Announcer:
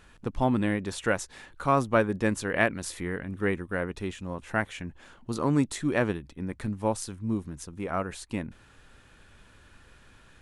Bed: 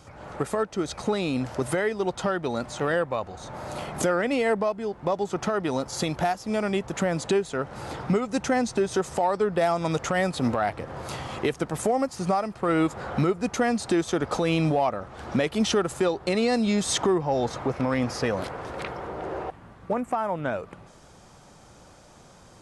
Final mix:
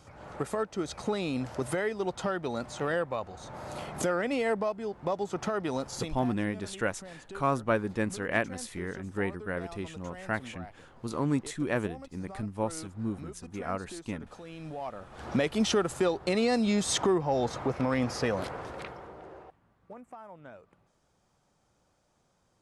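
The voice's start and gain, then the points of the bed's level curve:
5.75 s, −4.0 dB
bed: 0:05.93 −5 dB
0:06.33 −21.5 dB
0:14.54 −21.5 dB
0:15.26 −3 dB
0:18.57 −3 dB
0:19.61 −20 dB

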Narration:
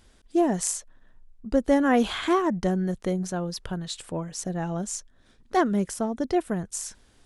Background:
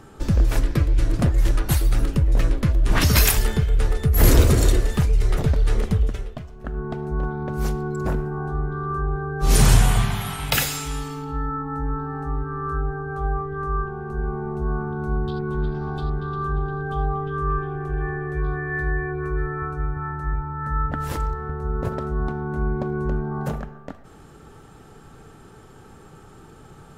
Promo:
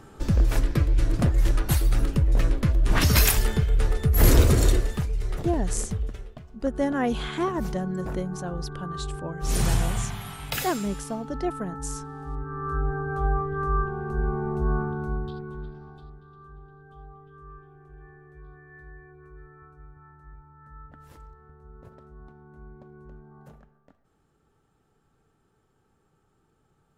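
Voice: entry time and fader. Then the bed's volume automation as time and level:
5.10 s, −4.5 dB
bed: 0:04.73 −2.5 dB
0:05.08 −9 dB
0:12.19 −9 dB
0:12.95 0 dB
0:14.80 0 dB
0:16.23 −22.5 dB

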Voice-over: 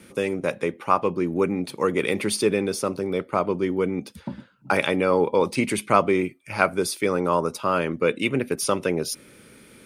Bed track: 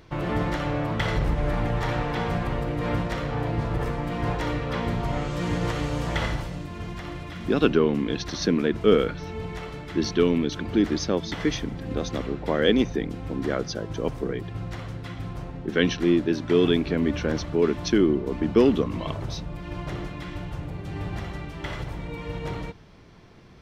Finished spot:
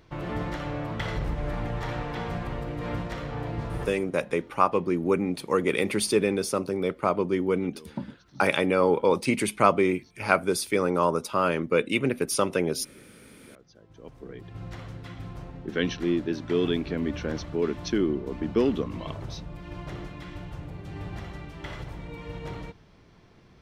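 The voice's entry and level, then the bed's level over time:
3.70 s, −1.5 dB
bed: 0:03.83 −5.5 dB
0:04.15 −28.5 dB
0:13.58 −28.5 dB
0:14.66 −5 dB

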